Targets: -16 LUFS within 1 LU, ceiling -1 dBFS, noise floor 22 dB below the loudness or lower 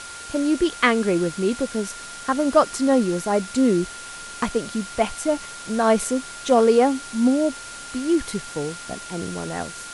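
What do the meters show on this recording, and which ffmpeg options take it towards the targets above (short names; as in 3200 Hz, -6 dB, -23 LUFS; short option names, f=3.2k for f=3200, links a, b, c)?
steady tone 1400 Hz; tone level -38 dBFS; noise floor -37 dBFS; noise floor target -45 dBFS; loudness -22.5 LUFS; peak -3.5 dBFS; loudness target -16.0 LUFS
-> -af "bandreject=f=1.4k:w=30"
-af "afftdn=nr=8:nf=-37"
-af "volume=6.5dB,alimiter=limit=-1dB:level=0:latency=1"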